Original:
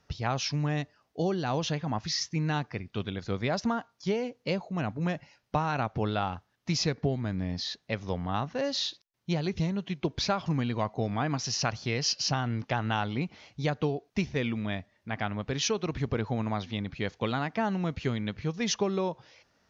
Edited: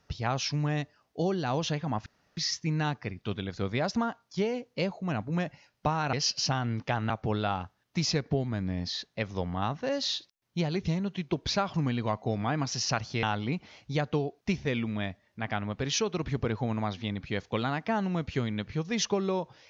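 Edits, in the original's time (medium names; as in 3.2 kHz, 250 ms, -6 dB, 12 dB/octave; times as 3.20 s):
2.06 s: insert room tone 0.31 s
11.95–12.92 s: move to 5.82 s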